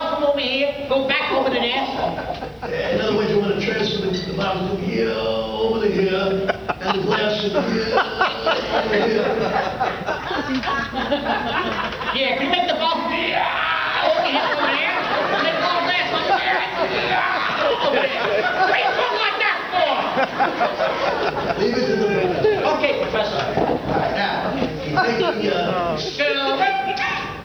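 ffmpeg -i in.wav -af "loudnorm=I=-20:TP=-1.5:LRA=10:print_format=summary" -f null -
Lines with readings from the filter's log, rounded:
Input Integrated:    -20.1 LUFS
Input True Peak:      -2.9 dBTP
Input LRA:             2.2 LU
Input Threshold:     -30.1 LUFS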